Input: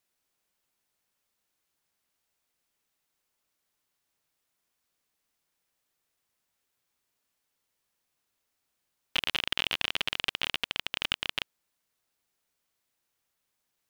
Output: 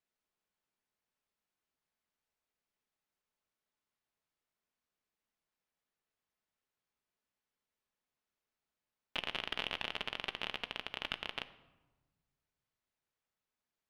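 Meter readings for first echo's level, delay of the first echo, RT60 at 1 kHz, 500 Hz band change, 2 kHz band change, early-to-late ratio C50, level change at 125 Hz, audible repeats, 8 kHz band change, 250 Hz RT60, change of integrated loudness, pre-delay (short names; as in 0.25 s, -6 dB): none, none, 1.1 s, -3.0 dB, -8.5 dB, 15.0 dB, -7.0 dB, none, -15.5 dB, 1.7 s, -9.0 dB, 5 ms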